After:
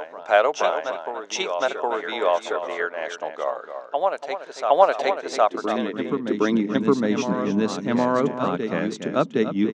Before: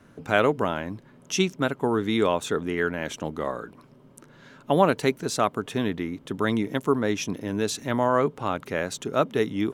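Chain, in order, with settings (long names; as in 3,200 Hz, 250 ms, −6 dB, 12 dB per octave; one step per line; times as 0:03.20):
low-pass filter 6,600 Hz 24 dB per octave
slap from a distant wall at 49 metres, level −8 dB
transient designer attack +2 dB, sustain −4 dB
high-pass filter sweep 650 Hz → 190 Hz, 0:05.71–0:06.81
on a send: backwards echo 763 ms −6.5 dB
on the sum: level −1 dB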